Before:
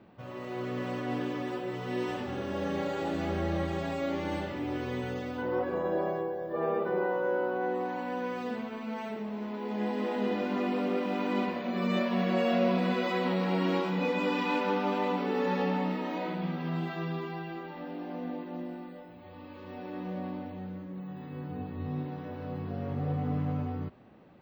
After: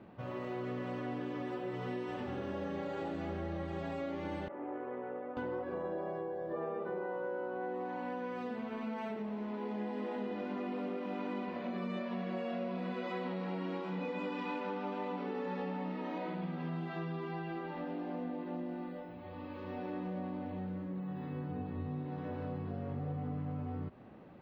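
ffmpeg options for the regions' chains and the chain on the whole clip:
ffmpeg -i in.wav -filter_complex "[0:a]asettb=1/sr,asplit=3[link_01][link_02][link_03];[link_01]atrim=end=4.484[link_04];[link_02]atrim=start=4.48:end=5.37,asetpts=PTS-STARTPTS,afade=type=in:duration=0.004:curve=qsin,afade=type=out:start_time=0.886:duration=0.004:curve=qsin,adynamicsmooth=sensitivity=1:basefreq=1000,highpass=500,lowpass=2100[link_05];[link_03]atrim=start=5.366[link_06];[link_04][link_05]acrossfade=duration=0.004:curve1=hsin:curve2=qsin[link_07];[link_07][link_06]acrossfade=duration=0.004:curve1=qsin:curve2=hsin,highshelf=frequency=4400:gain=-11,acompressor=threshold=-38dB:ratio=6,volume=2dB" out.wav

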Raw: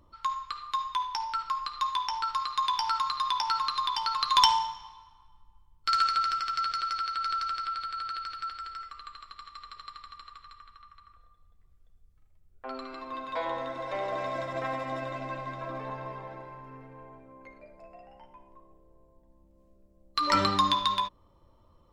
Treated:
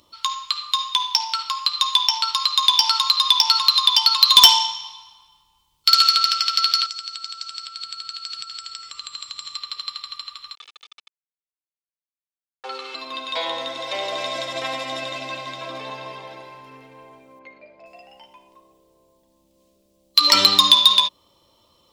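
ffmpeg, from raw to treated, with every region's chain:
ffmpeg -i in.wav -filter_complex "[0:a]asettb=1/sr,asplit=3[link_01][link_02][link_03];[link_01]atrim=end=6.864[link_04];[link_02]atrim=start=6.86:end=9.56,asetpts=PTS-STARTPTS,afade=type=in:duration=0.004:curve=qsin,afade=type=out:start_time=2.696:duration=0.004:curve=qsin,equalizer=frequency=140:width=0.68:gain=11,acompressor=threshold=-44dB:ratio=8:attack=3.2:release=140:knee=1:detection=peak,lowpass=frequency=7900:width_type=q:width=5.3[link_05];[link_03]atrim=start=9.556[link_06];[link_04][link_05]acrossfade=duration=0.004:curve1=hsin:curve2=qsin[link_07];[link_07][link_06]acrossfade=duration=0.004:curve1=qsin:curve2=hsin,asettb=1/sr,asplit=3[link_08][link_09][link_10];[link_08]atrim=end=10.554[link_11];[link_09]atrim=start=10.55:end=12.95,asetpts=PTS-STARTPTS,afade=type=in:duration=0.004:curve=qsin,afade=type=out:start_time=2.396:duration=0.004:curve=qsin,aeval=exprs='val(0)*gte(abs(val(0)),0.00473)':channel_layout=same,highpass=390,lowpass=2700,aecho=1:1:2.3:0.93,atrim=end_sample=105840[link_12];[link_10]atrim=start=12.946[link_13];[link_11][link_12]acrossfade=duration=0.004:curve1=hsin:curve2=qsin[link_14];[link_14][link_13]acrossfade=duration=0.004:curve1=qsin:curve2=hsin,asettb=1/sr,asplit=3[link_15][link_16][link_17];[link_15]atrim=end=17.394[link_18];[link_16]atrim=start=17.39:end=17.86,asetpts=PTS-STARTPTS,afade=type=in:duration=0.004:curve=qsin,afade=type=out:start_time=0.466:duration=0.004:curve=qsin,highpass=130,lowpass=2600,aeval=exprs='val(0)+0.000447*(sin(2*PI*50*n/s)+sin(2*PI*2*50*n/s)/2+sin(2*PI*3*50*n/s)/3+sin(2*PI*4*50*n/s)/4+sin(2*PI*5*50*n/s)/5)':channel_layout=same[link_19];[link_17]atrim=start=17.856[link_20];[link_18][link_19]acrossfade=duration=0.004:curve1=hsin:curve2=qsin[link_21];[link_21][link_20]acrossfade=duration=0.004:curve1=qsin:curve2=hsin,highpass=frequency=350:poles=1,highshelf=frequency=2300:width_type=q:width=1.5:gain=12,acontrast=82,volume=-1dB" out.wav

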